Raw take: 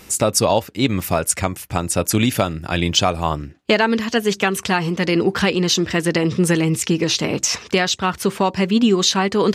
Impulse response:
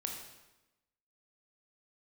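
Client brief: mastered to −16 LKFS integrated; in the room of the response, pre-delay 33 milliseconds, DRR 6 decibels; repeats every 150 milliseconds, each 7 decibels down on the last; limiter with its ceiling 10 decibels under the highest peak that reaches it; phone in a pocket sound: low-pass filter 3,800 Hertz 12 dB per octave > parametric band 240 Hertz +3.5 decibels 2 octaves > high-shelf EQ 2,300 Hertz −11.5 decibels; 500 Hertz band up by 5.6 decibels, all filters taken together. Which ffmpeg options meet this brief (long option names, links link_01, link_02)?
-filter_complex "[0:a]equalizer=frequency=500:width_type=o:gain=5.5,alimiter=limit=-10dB:level=0:latency=1,aecho=1:1:150|300|450|600|750:0.447|0.201|0.0905|0.0407|0.0183,asplit=2[link_01][link_02];[1:a]atrim=start_sample=2205,adelay=33[link_03];[link_02][link_03]afir=irnorm=-1:irlink=0,volume=-6dB[link_04];[link_01][link_04]amix=inputs=2:normalize=0,lowpass=3800,equalizer=frequency=240:width_type=o:width=2:gain=3.5,highshelf=frequency=2300:gain=-11.5,volume=2dB"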